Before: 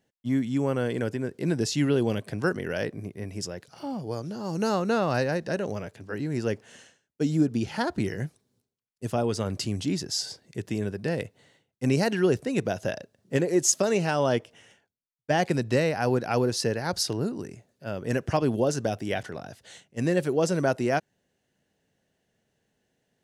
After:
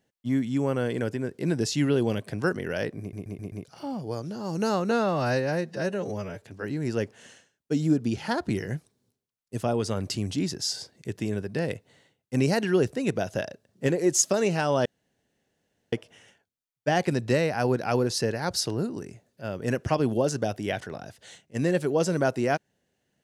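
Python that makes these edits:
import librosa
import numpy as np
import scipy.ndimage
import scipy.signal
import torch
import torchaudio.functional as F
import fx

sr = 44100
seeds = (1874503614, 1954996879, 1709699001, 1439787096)

y = fx.edit(x, sr, fx.stutter_over(start_s=3.0, slice_s=0.13, count=5),
    fx.stretch_span(start_s=4.91, length_s=1.01, factor=1.5),
    fx.insert_room_tone(at_s=14.35, length_s=1.07), tone=tone)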